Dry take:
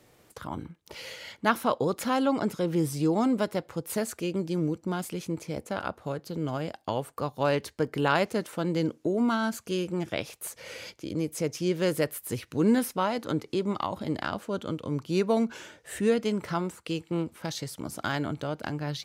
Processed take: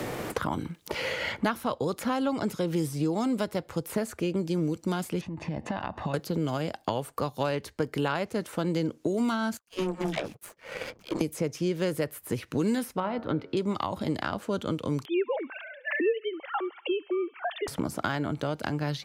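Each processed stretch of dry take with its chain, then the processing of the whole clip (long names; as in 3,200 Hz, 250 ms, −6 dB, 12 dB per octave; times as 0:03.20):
0:05.21–0:06.14: low-pass filter 2,700 Hz + comb filter 1.1 ms, depth 66% + downward compressor 16 to 1, threshold −40 dBFS
0:09.57–0:11.21: high-pass filter 100 Hz + all-pass dispersion lows, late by 132 ms, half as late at 420 Hz + power curve on the samples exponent 2
0:13.00–0:13.57: high-frequency loss of the air 400 metres + hum removal 92 Hz, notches 20
0:15.05–0:17.68: three sine waves on the formant tracks + high-pass filter 380 Hz 24 dB per octave + delay with a high-pass on its return 69 ms, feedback 63%, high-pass 2,200 Hz, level −19.5 dB
whole clip: low-shelf EQ 62 Hz +7 dB; multiband upward and downward compressor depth 100%; level −1.5 dB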